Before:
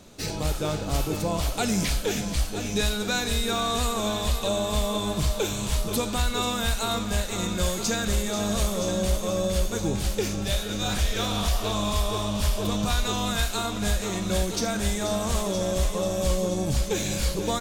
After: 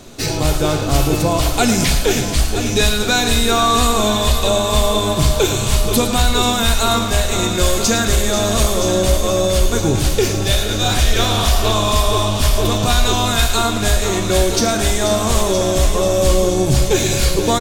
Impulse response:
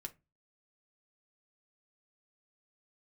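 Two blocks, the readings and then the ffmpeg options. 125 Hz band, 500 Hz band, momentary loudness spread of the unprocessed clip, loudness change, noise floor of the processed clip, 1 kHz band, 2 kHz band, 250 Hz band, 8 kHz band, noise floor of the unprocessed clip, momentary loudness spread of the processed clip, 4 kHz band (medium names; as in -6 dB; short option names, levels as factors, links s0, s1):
+10.5 dB, +11.0 dB, 2 LU, +10.5 dB, -20 dBFS, +11.5 dB, +10.5 dB, +8.5 dB, +11.0 dB, -32 dBFS, 2 LU, +11.0 dB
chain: -filter_complex "[0:a]aecho=1:1:109|218|327|436|545:0.282|0.135|0.0649|0.0312|0.015,asplit=2[s0][s1];[1:a]atrim=start_sample=2205[s2];[s1][s2]afir=irnorm=-1:irlink=0,volume=1.41[s3];[s0][s3]amix=inputs=2:normalize=0,volume=1.88"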